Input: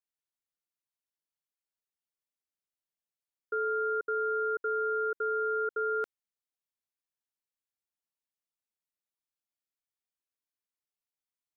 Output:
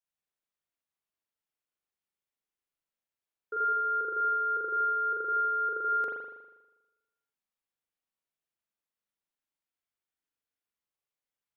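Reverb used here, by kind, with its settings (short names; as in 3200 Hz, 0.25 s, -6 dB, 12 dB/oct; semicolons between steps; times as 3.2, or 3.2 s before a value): spring tank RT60 1.1 s, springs 40 ms, chirp 60 ms, DRR -4.5 dB; gain -3.5 dB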